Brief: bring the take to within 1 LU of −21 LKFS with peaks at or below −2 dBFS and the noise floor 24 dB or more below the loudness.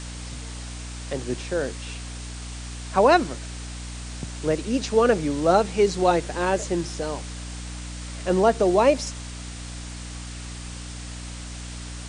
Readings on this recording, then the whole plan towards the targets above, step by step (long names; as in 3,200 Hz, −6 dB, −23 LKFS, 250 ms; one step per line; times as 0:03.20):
mains hum 60 Hz; hum harmonics up to 300 Hz; level of the hum −33 dBFS; background noise floor −36 dBFS; target noise floor −47 dBFS; integrated loudness −23.0 LKFS; sample peak −5.5 dBFS; target loudness −21.0 LKFS
→ mains-hum notches 60/120/180/240/300 Hz
noise reduction from a noise print 11 dB
level +2 dB